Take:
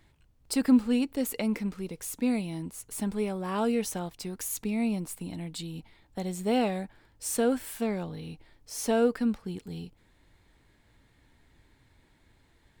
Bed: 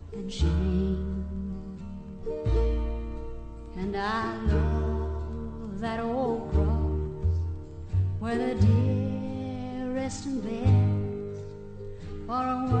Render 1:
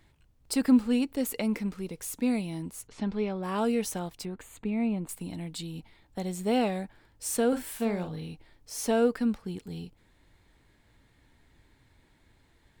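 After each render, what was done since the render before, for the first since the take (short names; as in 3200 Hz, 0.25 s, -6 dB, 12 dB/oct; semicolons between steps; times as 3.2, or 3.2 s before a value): 2.87–3.43 LPF 5000 Hz 24 dB/oct; 4.25–5.09 running mean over 8 samples; 7.48–8.27 doubler 44 ms -8 dB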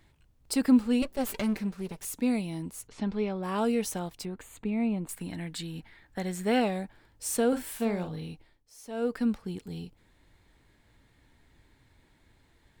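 1.02–2.05 minimum comb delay 5.1 ms; 5.13–6.6 bell 1700 Hz +12.5 dB 0.59 oct; 8.31–9.23 dip -15.5 dB, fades 0.33 s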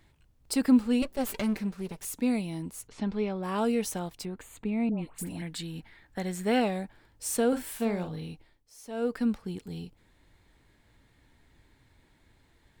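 4.89–5.42 dispersion highs, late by 97 ms, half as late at 1100 Hz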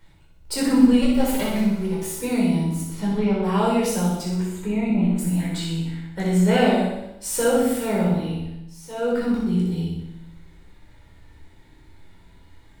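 flutter echo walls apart 10.4 m, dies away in 0.8 s; shoebox room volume 610 m³, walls furnished, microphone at 4.7 m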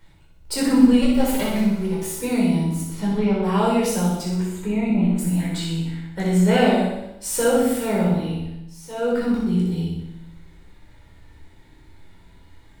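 gain +1 dB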